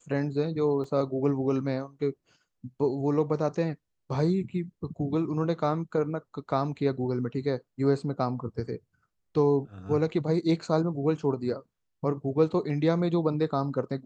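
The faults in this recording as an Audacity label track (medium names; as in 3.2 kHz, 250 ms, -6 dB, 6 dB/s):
0.840000	0.840000	dropout 2.8 ms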